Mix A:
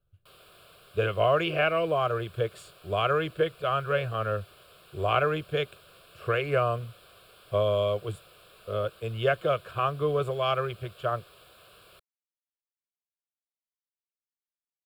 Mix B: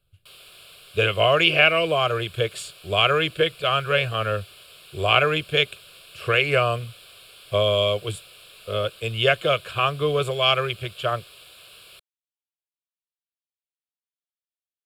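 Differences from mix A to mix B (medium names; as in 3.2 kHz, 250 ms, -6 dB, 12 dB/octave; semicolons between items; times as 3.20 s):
speech +4.0 dB; master: add high-order bell 5 kHz +11 dB 2.9 oct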